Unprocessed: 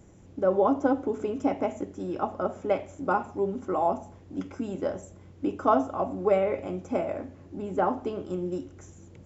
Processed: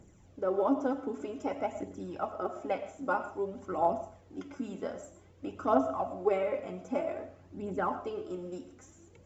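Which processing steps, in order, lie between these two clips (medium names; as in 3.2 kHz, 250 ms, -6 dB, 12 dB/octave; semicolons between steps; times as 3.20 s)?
bass shelf 380 Hz -4.5 dB; phaser 0.52 Hz, delay 4.7 ms, feedback 51%; on a send: reverberation RT60 0.35 s, pre-delay 70 ms, DRR 12 dB; on the sum: trim -5 dB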